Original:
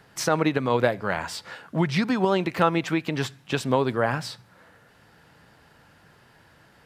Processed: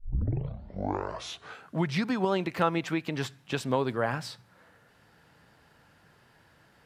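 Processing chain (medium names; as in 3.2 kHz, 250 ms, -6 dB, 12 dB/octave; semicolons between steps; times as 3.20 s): tape start-up on the opening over 1.73 s; transformer saturation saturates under 140 Hz; trim -5 dB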